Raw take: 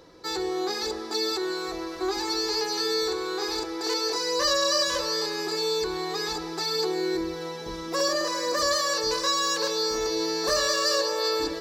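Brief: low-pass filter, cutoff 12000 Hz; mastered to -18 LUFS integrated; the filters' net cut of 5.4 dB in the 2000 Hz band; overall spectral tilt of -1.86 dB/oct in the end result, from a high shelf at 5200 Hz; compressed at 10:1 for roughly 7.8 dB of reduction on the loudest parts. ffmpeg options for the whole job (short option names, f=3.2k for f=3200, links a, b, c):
-af "lowpass=12k,equalizer=f=2k:t=o:g=-7,highshelf=f=5.2k:g=3,acompressor=threshold=-28dB:ratio=10,volume=13dB"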